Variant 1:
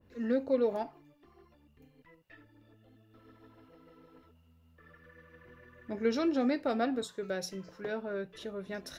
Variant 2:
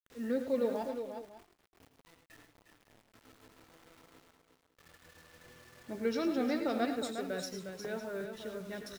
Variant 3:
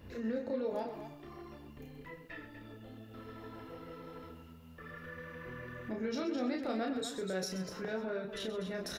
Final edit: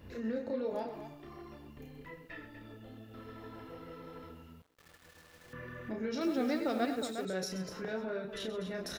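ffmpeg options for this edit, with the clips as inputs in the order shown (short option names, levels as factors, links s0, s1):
-filter_complex "[1:a]asplit=2[s0][s1];[2:a]asplit=3[s2][s3][s4];[s2]atrim=end=4.622[s5];[s0]atrim=start=4.618:end=5.532[s6];[s3]atrim=start=5.528:end=6.212[s7];[s1]atrim=start=6.208:end=7.252[s8];[s4]atrim=start=7.248[s9];[s5][s6]acrossfade=d=0.004:c1=hsin:c2=hsin[s10];[s10][s7]acrossfade=d=0.004:c1=hsin:c2=hsin[s11];[s11][s8]acrossfade=d=0.004:c1=hsin:c2=hsin[s12];[s12][s9]acrossfade=d=0.004:c1=hsin:c2=hsin"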